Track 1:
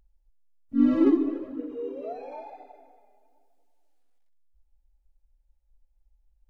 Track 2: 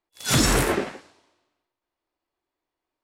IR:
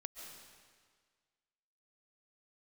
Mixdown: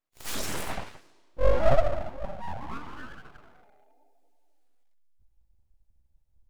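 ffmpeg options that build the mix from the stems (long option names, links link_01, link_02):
-filter_complex "[0:a]adelay=650,volume=1dB[link_01];[1:a]alimiter=limit=-17dB:level=0:latency=1:release=434,volume=-4dB[link_02];[link_01][link_02]amix=inputs=2:normalize=0,equalizer=frequency=340:width_type=o:width=0.37:gain=3.5,aeval=exprs='abs(val(0))':channel_layout=same"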